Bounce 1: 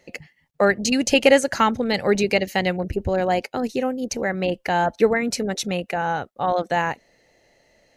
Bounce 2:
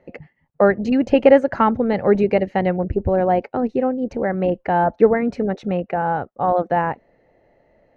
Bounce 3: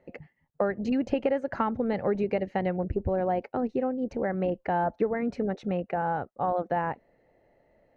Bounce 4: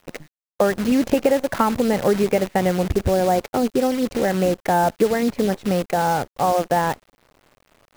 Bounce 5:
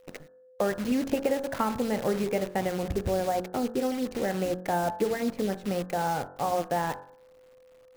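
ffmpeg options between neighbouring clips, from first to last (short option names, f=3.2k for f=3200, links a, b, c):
-af "lowpass=1.2k,volume=4dB"
-af "acompressor=threshold=-16dB:ratio=6,volume=-6.5dB"
-af "acrusher=bits=7:dc=4:mix=0:aa=0.000001,volume=8.5dB"
-af "aeval=exprs='val(0)+0.00562*sin(2*PI*510*n/s)':c=same,bandreject=f=45.62:t=h:w=4,bandreject=f=91.24:t=h:w=4,bandreject=f=136.86:t=h:w=4,bandreject=f=182.48:t=h:w=4,bandreject=f=228.1:t=h:w=4,bandreject=f=273.72:t=h:w=4,bandreject=f=319.34:t=h:w=4,bandreject=f=364.96:t=h:w=4,bandreject=f=410.58:t=h:w=4,bandreject=f=456.2:t=h:w=4,bandreject=f=501.82:t=h:w=4,bandreject=f=547.44:t=h:w=4,bandreject=f=593.06:t=h:w=4,bandreject=f=638.68:t=h:w=4,bandreject=f=684.3:t=h:w=4,bandreject=f=729.92:t=h:w=4,bandreject=f=775.54:t=h:w=4,bandreject=f=821.16:t=h:w=4,bandreject=f=866.78:t=h:w=4,bandreject=f=912.4:t=h:w=4,bandreject=f=958.02:t=h:w=4,bandreject=f=1.00364k:t=h:w=4,bandreject=f=1.04926k:t=h:w=4,bandreject=f=1.09488k:t=h:w=4,bandreject=f=1.1405k:t=h:w=4,bandreject=f=1.18612k:t=h:w=4,bandreject=f=1.23174k:t=h:w=4,bandreject=f=1.27736k:t=h:w=4,bandreject=f=1.32298k:t=h:w=4,bandreject=f=1.3686k:t=h:w=4,bandreject=f=1.41422k:t=h:w=4,bandreject=f=1.45984k:t=h:w=4,bandreject=f=1.50546k:t=h:w=4,bandreject=f=1.55108k:t=h:w=4,bandreject=f=1.5967k:t=h:w=4,bandreject=f=1.64232k:t=h:w=4,bandreject=f=1.68794k:t=h:w=4,bandreject=f=1.73356k:t=h:w=4,bandreject=f=1.77918k:t=h:w=4,volume=-8dB"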